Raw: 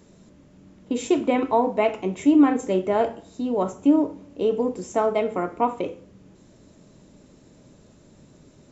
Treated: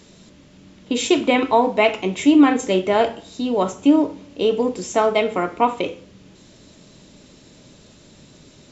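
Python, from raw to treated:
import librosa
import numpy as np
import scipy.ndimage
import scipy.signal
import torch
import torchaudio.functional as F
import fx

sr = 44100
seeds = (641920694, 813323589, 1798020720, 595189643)

y = fx.peak_eq(x, sr, hz=3700.0, db=11.5, octaves=2.0)
y = y * 10.0 ** (3.0 / 20.0)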